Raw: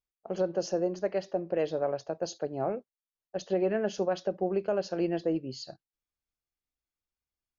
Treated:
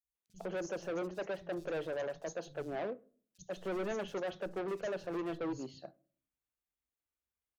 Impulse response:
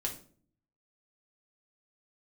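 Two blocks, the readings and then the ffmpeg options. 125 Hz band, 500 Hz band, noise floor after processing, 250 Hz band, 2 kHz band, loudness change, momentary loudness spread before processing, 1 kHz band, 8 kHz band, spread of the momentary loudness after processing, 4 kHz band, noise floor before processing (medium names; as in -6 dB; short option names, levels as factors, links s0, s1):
-8.5 dB, -8.5 dB, under -85 dBFS, -8.0 dB, -0.5 dB, -8.0 dB, 11 LU, -7.0 dB, no reading, 9 LU, -7.5 dB, under -85 dBFS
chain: -filter_complex "[0:a]highpass=41,equalizer=f=4800:w=3.6:g=-14,asoftclip=type=hard:threshold=0.0251,acrossover=split=150|5100[s0][s1][s2];[s0]adelay=40[s3];[s1]adelay=150[s4];[s3][s4][s2]amix=inputs=3:normalize=0,asplit=2[s5][s6];[1:a]atrim=start_sample=2205,lowpass=2200,adelay=40[s7];[s6][s7]afir=irnorm=-1:irlink=0,volume=0.0891[s8];[s5][s8]amix=inputs=2:normalize=0,volume=0.794"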